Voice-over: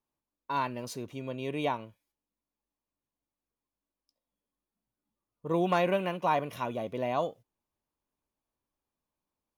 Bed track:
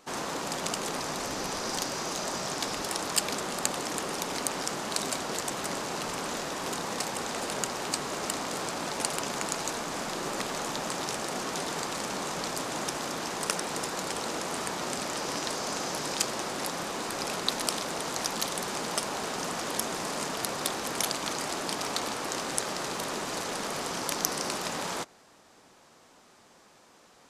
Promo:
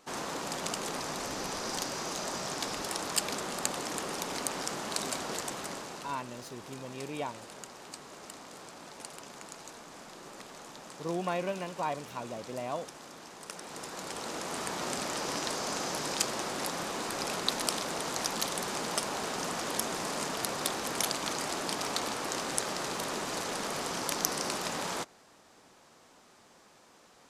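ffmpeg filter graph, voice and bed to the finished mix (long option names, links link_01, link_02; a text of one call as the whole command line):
ffmpeg -i stem1.wav -i stem2.wav -filter_complex "[0:a]adelay=5550,volume=-6dB[link_01];[1:a]volume=10dB,afade=type=out:start_time=5.33:duration=0.89:silence=0.266073,afade=type=in:start_time=13.46:duration=1.42:silence=0.223872[link_02];[link_01][link_02]amix=inputs=2:normalize=0" out.wav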